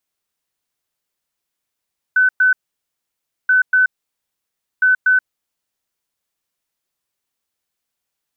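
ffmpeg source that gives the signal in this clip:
-f lavfi -i "aevalsrc='0.335*sin(2*PI*1510*t)*clip(min(mod(mod(t,1.33),0.24),0.13-mod(mod(t,1.33),0.24))/0.005,0,1)*lt(mod(t,1.33),0.48)':d=3.99:s=44100"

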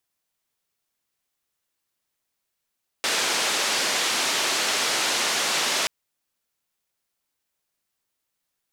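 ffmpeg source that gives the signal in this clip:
-f lavfi -i "anoisesrc=c=white:d=2.83:r=44100:seed=1,highpass=f=300,lowpass=f=5900,volume=-13.5dB"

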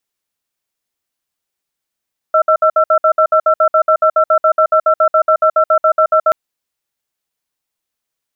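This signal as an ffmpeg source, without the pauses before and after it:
-f lavfi -i "aevalsrc='0.316*(sin(2*PI*630*t)+sin(2*PI*1340*t))*clip(min(mod(t,0.14),0.08-mod(t,0.14))/0.005,0,1)':d=3.98:s=44100"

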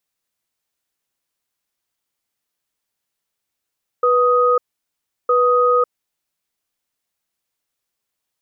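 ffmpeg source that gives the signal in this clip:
-f lavfi -i "aevalsrc='0.188*(sin(2*PI*491*t)+sin(2*PI*1250*t))*clip(min(mod(t,1.26),0.55-mod(t,1.26))/0.005,0,1)':d=2.05:s=44100"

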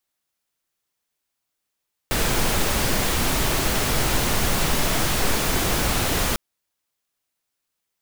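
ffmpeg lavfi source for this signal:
-f lavfi -i "anoisesrc=c=pink:a=0.457:d=4.25:r=44100:seed=1"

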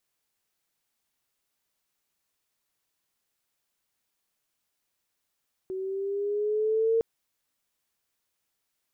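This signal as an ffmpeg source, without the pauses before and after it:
-f lavfi -i "aevalsrc='pow(10,(-20+10.5*(t/1.31-1))/20)*sin(2*PI*374*1.31/(3.5*log(2)/12)*(exp(3.5*log(2)/12*t/1.31)-1))':d=1.31:s=44100"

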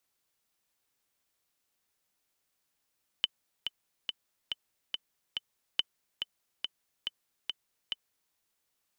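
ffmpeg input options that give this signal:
-f lavfi -i "aevalsrc='pow(10,(-12.5-7*gte(mod(t,6*60/141),60/141))/20)*sin(2*PI*3030*mod(t,60/141))*exp(-6.91*mod(t,60/141)/0.03)':d=5.1:s=44100"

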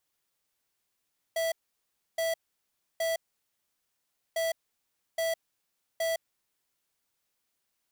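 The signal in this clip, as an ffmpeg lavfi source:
-f lavfi -i "aevalsrc='0.0355*(2*lt(mod(657*t,1),0.5)-1)*clip(min(mod(mod(t,3),0.82),0.16-mod(mod(t,3),0.82))/0.005,0,1)*lt(mod(t,3),2.46)':d=6:s=44100"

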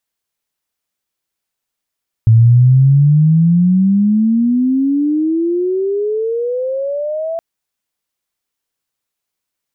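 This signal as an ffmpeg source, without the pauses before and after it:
-f lavfi -i "aevalsrc='pow(10,(-4-13.5*t/5.12)/20)*sin(2*PI*110*5.12/log(670/110)*(exp(log(670/110)*t/5.12)-1))':d=5.12:s=44100"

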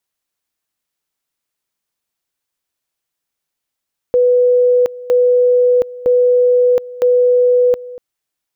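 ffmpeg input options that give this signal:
-f lavfi -i "aevalsrc='pow(10,(-8-19*gte(mod(t,0.96),0.72))/20)*sin(2*PI*494*t)':d=3.84:s=44100"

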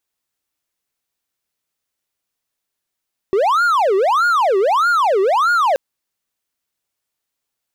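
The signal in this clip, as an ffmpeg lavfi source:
-f lavfi -i "aevalsrc='0.316*(1-4*abs(mod((904.5*t-525.5/(2*PI*1.6)*sin(2*PI*1.6*t))+0.25,1)-0.5))':d=2.43:s=44100"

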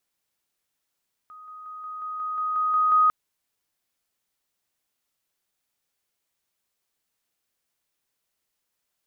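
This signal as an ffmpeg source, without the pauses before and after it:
-f lavfi -i "aevalsrc='pow(10,(-42+3*floor(t/0.18))/20)*sin(2*PI*1250*t)':d=1.8:s=44100"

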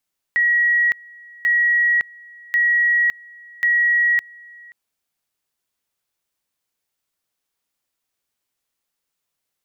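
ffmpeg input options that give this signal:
-f lavfi -i "aevalsrc='pow(10,(-13.5-26*gte(mod(t,1.09),0.56))/20)*sin(2*PI*1910*t)':d=4.36:s=44100"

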